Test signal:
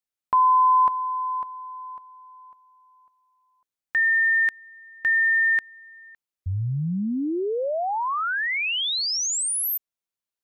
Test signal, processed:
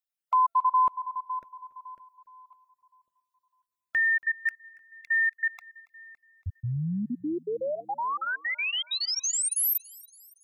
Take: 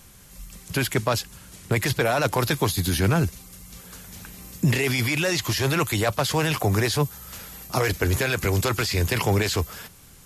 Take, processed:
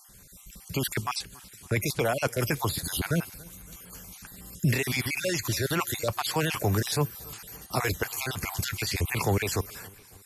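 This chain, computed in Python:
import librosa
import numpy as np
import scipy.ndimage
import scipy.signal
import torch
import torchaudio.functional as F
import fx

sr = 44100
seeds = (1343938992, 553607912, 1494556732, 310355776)

y = fx.spec_dropout(x, sr, seeds[0], share_pct=35)
y = fx.high_shelf(y, sr, hz=9100.0, db=6.0)
y = fx.echo_feedback(y, sr, ms=281, feedback_pct=55, wet_db=-23.5)
y = F.gain(torch.from_numpy(y), -3.5).numpy()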